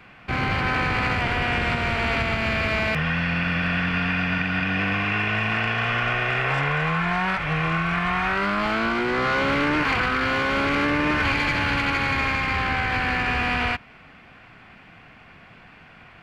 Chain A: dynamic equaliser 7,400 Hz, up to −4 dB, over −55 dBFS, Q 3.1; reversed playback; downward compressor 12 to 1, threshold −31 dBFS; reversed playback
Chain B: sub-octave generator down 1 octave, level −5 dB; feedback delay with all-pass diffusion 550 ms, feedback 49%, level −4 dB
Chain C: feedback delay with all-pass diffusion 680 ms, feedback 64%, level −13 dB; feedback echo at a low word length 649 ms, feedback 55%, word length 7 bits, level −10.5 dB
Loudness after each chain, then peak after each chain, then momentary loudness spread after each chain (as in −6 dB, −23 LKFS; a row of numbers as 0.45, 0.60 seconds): −33.5, −21.0, −22.0 LKFS; −20.5, −8.5, −9.5 dBFS; 14, 7, 11 LU